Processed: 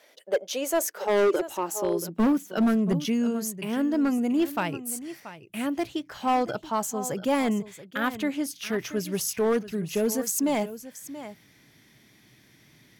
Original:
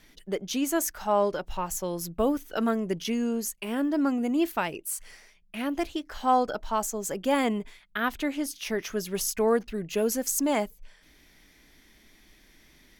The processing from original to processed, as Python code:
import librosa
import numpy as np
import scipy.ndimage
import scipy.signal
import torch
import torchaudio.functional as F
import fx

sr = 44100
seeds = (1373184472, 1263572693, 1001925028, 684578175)

y = fx.filter_sweep_highpass(x, sr, from_hz=560.0, to_hz=120.0, start_s=0.53, end_s=3.35, q=5.7)
y = y + 10.0 ** (-14.5 / 20.0) * np.pad(y, (int(681 * sr / 1000.0), 0))[:len(y)]
y = np.clip(10.0 ** (18.0 / 20.0) * y, -1.0, 1.0) / 10.0 ** (18.0 / 20.0)